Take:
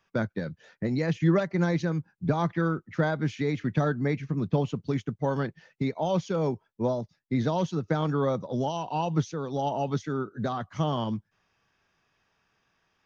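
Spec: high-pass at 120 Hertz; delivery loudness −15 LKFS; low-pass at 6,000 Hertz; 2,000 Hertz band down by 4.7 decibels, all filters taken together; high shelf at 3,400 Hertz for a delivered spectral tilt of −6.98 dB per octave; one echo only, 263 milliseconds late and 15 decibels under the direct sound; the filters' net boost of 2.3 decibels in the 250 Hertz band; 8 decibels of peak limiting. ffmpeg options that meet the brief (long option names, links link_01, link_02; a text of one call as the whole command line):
ffmpeg -i in.wav -af "highpass=120,lowpass=6000,equalizer=frequency=250:width_type=o:gain=4,equalizer=frequency=2000:width_type=o:gain=-5.5,highshelf=frequency=3400:gain=-4,alimiter=limit=-19dB:level=0:latency=1,aecho=1:1:263:0.178,volume=14.5dB" out.wav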